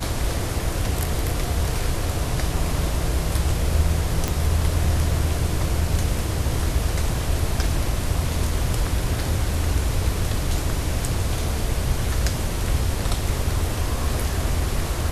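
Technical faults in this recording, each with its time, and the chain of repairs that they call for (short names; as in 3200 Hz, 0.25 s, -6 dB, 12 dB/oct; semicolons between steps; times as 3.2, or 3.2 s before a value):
4.28 pop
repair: de-click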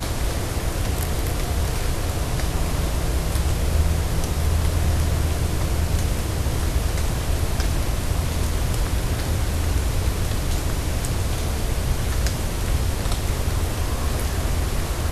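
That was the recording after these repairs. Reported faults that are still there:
none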